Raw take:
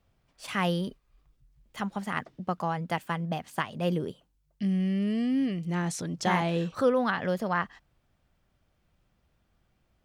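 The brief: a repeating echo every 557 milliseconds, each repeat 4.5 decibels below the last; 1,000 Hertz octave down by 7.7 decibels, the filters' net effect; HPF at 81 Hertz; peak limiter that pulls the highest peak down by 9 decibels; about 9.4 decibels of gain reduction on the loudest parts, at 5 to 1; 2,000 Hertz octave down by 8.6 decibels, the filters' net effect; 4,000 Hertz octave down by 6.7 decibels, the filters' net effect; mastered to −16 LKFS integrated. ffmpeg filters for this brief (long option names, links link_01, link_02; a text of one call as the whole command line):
ffmpeg -i in.wav -af "highpass=81,equalizer=frequency=1000:width_type=o:gain=-8.5,equalizer=frequency=2000:width_type=o:gain=-6.5,equalizer=frequency=4000:width_type=o:gain=-6,acompressor=threshold=-31dB:ratio=5,alimiter=level_in=7dB:limit=-24dB:level=0:latency=1,volume=-7dB,aecho=1:1:557|1114|1671|2228|2785|3342|3899|4456|5013:0.596|0.357|0.214|0.129|0.0772|0.0463|0.0278|0.0167|0.01,volume=22.5dB" out.wav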